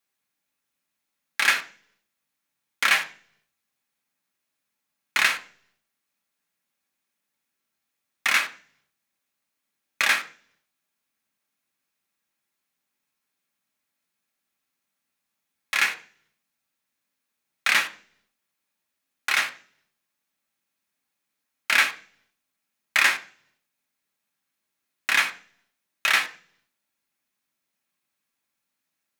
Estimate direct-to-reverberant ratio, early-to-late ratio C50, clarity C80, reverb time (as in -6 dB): 4.5 dB, 15.0 dB, 19.5 dB, 0.45 s